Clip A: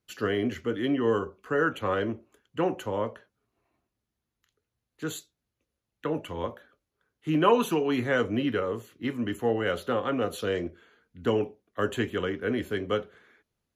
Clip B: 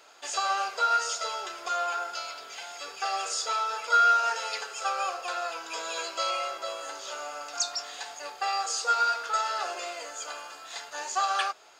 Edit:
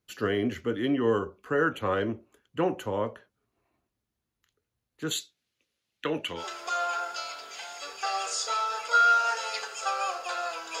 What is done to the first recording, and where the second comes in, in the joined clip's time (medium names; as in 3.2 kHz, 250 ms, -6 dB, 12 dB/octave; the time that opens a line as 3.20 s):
clip A
5.11–6.45 s: frequency weighting D
6.40 s: go over to clip B from 1.39 s, crossfade 0.10 s